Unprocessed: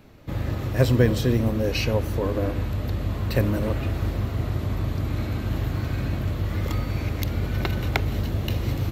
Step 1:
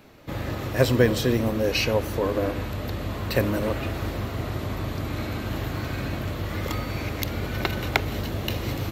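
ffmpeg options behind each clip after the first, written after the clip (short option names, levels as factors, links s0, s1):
-af "lowshelf=f=200:g=-10.5,volume=1.5"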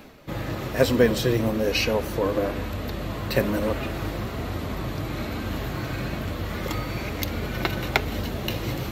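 -af "areverse,acompressor=mode=upward:threshold=0.02:ratio=2.5,areverse,flanger=delay=3.6:depth=2.9:regen=-50:speed=1.1:shape=triangular,volume=1.68"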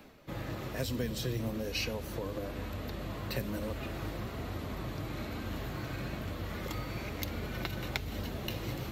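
-filter_complex "[0:a]acrossover=split=200|3000[s0][s1][s2];[s1]acompressor=threshold=0.0398:ratio=6[s3];[s0][s3][s2]amix=inputs=3:normalize=0,volume=0.376"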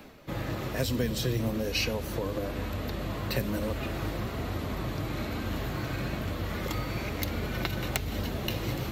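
-af "aeval=exprs='(mod(7.94*val(0)+1,2)-1)/7.94':c=same,volume=1.88"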